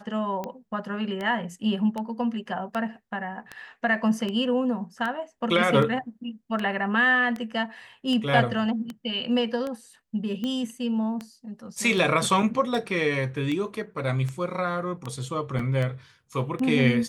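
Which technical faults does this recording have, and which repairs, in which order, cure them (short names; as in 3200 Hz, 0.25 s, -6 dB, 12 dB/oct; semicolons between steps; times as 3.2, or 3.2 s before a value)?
tick 78 rpm -19 dBFS
15.59 gap 3.8 ms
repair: de-click; interpolate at 15.59, 3.8 ms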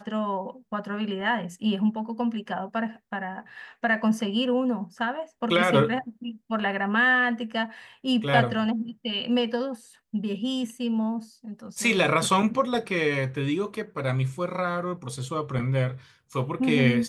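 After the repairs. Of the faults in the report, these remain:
none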